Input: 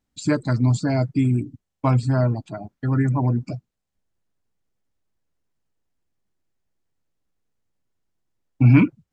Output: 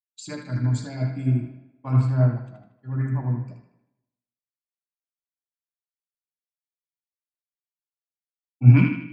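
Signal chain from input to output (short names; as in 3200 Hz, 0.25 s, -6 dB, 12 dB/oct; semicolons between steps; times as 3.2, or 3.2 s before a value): narrowing echo 78 ms, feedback 69%, band-pass 2400 Hz, level -3 dB; on a send at -5 dB: reverb RT60 2.2 s, pre-delay 3 ms; on the sum: three-band expander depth 100%; gain -10.5 dB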